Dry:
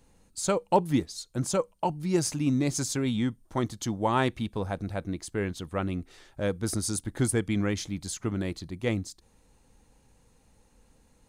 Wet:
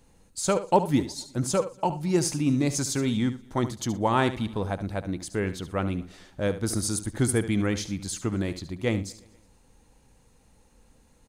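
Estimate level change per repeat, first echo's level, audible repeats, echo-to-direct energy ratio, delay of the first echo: repeats not evenly spaced, −12.5 dB, 4, −12.0 dB, 72 ms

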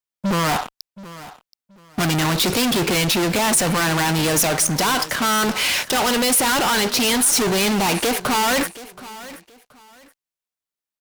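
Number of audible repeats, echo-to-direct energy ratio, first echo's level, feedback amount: 2, −17.5 dB, −17.5 dB, 25%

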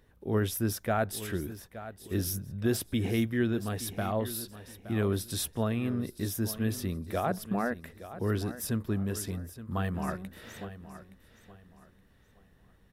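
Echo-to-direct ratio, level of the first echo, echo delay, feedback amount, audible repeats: −13.5 dB, −14.0 dB, 870 ms, 29%, 2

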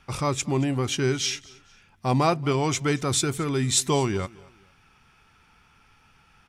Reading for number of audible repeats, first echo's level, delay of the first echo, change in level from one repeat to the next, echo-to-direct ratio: 2, −23.0 dB, 228 ms, −9.5 dB, −22.5 dB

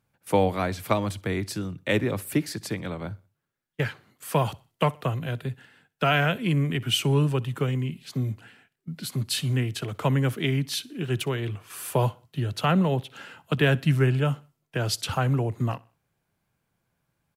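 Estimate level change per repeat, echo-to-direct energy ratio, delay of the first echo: −8.0 dB, −23.0 dB, 62 ms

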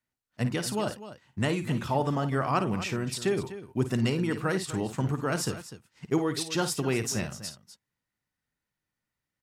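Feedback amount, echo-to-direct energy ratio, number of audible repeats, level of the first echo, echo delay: repeats not evenly spaced, −9.0 dB, 2, −11.0 dB, 53 ms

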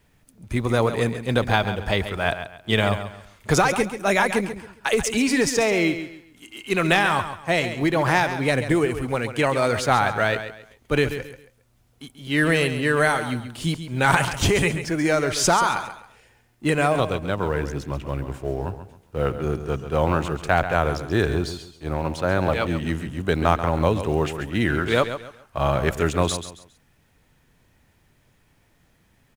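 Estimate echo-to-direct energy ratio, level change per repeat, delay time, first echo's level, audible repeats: −10.0 dB, −11.0 dB, 136 ms, −10.5 dB, 3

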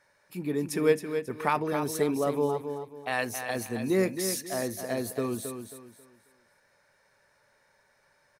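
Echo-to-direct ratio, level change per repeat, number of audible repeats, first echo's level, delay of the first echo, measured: −7.5 dB, −10.0 dB, 3, −8.0 dB, 270 ms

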